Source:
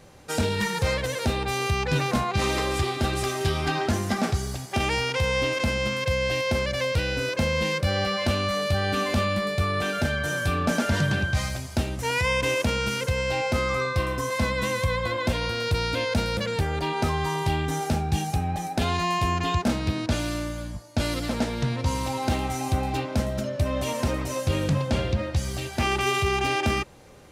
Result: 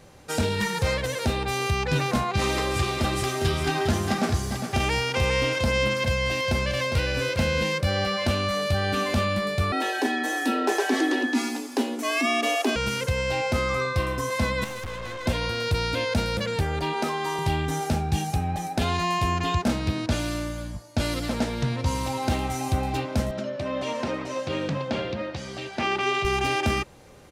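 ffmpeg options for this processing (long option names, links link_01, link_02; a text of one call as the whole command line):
ffmpeg -i in.wav -filter_complex "[0:a]asplit=3[link_01][link_02][link_03];[link_01]afade=type=out:start_time=2.75:duration=0.02[link_04];[link_02]aecho=1:1:406:0.447,afade=type=in:start_time=2.75:duration=0.02,afade=type=out:start_time=7.62:duration=0.02[link_05];[link_03]afade=type=in:start_time=7.62:duration=0.02[link_06];[link_04][link_05][link_06]amix=inputs=3:normalize=0,asettb=1/sr,asplit=3[link_07][link_08][link_09];[link_07]atrim=end=9.724[link_10];[link_08]atrim=start=9.72:end=12.76,asetpts=PTS-STARTPTS,afade=type=in:duration=0.004:curve=qsin,afade=type=out:start_time=3.036:duration=0.004:curve=qsin,afreqshift=170[link_11];[link_09]atrim=start=12.756[link_12];[link_10][link_11]acrossfade=duration=0.004:curve1=hsin:curve2=qsin[link_13];[link_13][link_12]acrossfade=duration=0.004:curve1=qsin:curve2=hsin,asettb=1/sr,asplit=3[link_14][link_15][link_16];[link_14]atrim=end=14.644[link_17];[link_15]atrim=start=14.64:end=15.26,asetpts=PTS-STARTPTS,afade=type=in:duration=0.004:curve=qsin,afade=type=out:start_time=0.616:duration=0.004:curve=qsin,aeval=exprs='(tanh(39.8*val(0)+0.7)-tanh(0.7))/39.8':channel_layout=same[link_18];[link_16]atrim=start=15.256[link_19];[link_17][link_18]acrossfade=duration=0.004:curve1=hsin:curve2=qsin[link_20];[link_20][link_19]acrossfade=duration=0.004:curve1=qsin:curve2=hsin,asettb=1/sr,asplit=3[link_21][link_22][link_23];[link_21]atrim=end=16.944[link_24];[link_22]atrim=start=16.94:end=17.39,asetpts=PTS-STARTPTS,afade=type=in:duration=0.004:curve=qsin,afade=type=out:start_time=0.446:duration=0.004:curve=qsin,highpass=frequency=200:width=0.5412,highpass=frequency=200:width=1.3066[link_25];[link_23]atrim=start=17.386[link_26];[link_24][link_25]acrossfade=duration=0.004:curve1=hsin:curve2=qsin[link_27];[link_27][link_26]acrossfade=duration=0.004:curve1=qsin:curve2=hsin,asettb=1/sr,asplit=3[link_28][link_29][link_30];[link_28]atrim=end=23.314[link_31];[link_29]atrim=start=23.31:end=26.25,asetpts=PTS-STARTPTS,afade=type=in:duration=0.004:curve=qsin,afade=type=out:start_time=2.936:duration=0.004:curve=qsin,highpass=200,lowpass=4500[link_32];[link_30]atrim=start=26.246[link_33];[link_31][link_32]acrossfade=duration=0.004:curve1=hsin:curve2=qsin[link_34];[link_34][link_33]acrossfade=duration=0.004:curve1=qsin:curve2=hsin" out.wav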